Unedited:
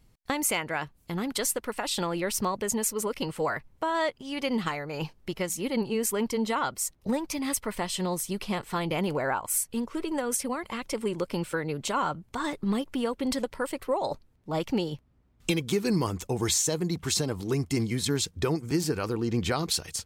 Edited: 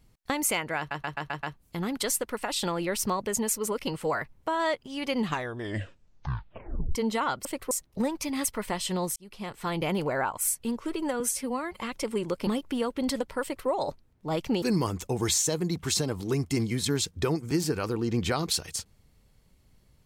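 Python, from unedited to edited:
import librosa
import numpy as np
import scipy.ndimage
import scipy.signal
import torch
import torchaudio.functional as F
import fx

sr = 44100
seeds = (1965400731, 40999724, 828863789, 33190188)

y = fx.edit(x, sr, fx.stutter(start_s=0.78, slice_s=0.13, count=6),
    fx.tape_stop(start_s=4.53, length_s=1.77),
    fx.fade_in_span(start_s=8.25, length_s=0.61),
    fx.stretch_span(start_s=10.29, length_s=0.38, factor=1.5),
    fx.cut(start_s=11.37, length_s=1.33),
    fx.duplicate(start_s=13.65, length_s=0.26, to_s=6.8),
    fx.cut(start_s=14.85, length_s=0.97), tone=tone)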